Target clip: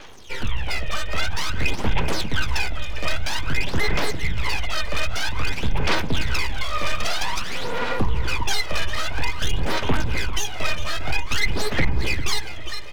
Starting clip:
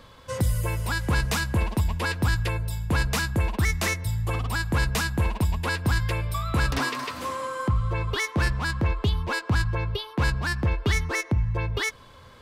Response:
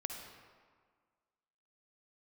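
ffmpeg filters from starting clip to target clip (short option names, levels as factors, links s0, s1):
-filter_complex "[0:a]afreqshift=-48,asplit=2[s0][s1];[s1]adelay=389,lowpass=f=1800:p=1,volume=0.316,asplit=2[s2][s3];[s3]adelay=389,lowpass=f=1800:p=1,volume=0.53,asplit=2[s4][s5];[s5]adelay=389,lowpass=f=1800:p=1,volume=0.53,asplit=2[s6][s7];[s7]adelay=389,lowpass=f=1800:p=1,volume=0.53,asplit=2[s8][s9];[s9]adelay=389,lowpass=f=1800:p=1,volume=0.53,asplit=2[s10][s11];[s11]adelay=389,lowpass=f=1800:p=1,volume=0.53[s12];[s2][s4][s6][s8][s10][s12]amix=inputs=6:normalize=0[s13];[s0][s13]amix=inputs=2:normalize=0,aexciter=amount=3.3:drive=5.7:freq=2100,volume=8.41,asoftclip=hard,volume=0.119,aresample=8000,aresample=44100,aeval=exprs='abs(val(0))':c=same,aphaser=in_gain=1:out_gain=1:delay=1.6:decay=0.66:speed=0.53:type=sinusoidal,asplit=2[s14][s15];[s15]aecho=0:1:380|760|1140|1520:0.133|0.0587|0.0258|0.0114[s16];[s14][s16]amix=inputs=2:normalize=0,asetrate=42336,aresample=44100,lowshelf=f=150:g=-4.5,volume=1.26"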